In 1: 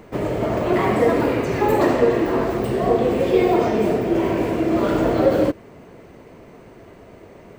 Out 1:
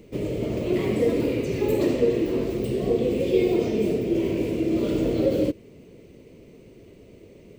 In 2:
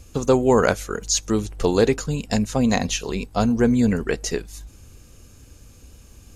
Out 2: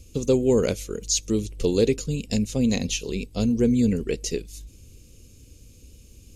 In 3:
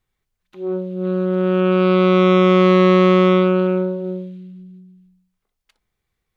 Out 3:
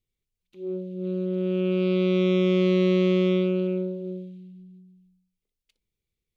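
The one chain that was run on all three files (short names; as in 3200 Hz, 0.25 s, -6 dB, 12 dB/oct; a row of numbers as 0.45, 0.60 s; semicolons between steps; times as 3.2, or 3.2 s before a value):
band shelf 1100 Hz -15 dB; match loudness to -24 LUFS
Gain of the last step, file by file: -3.5, -2.0, -7.5 dB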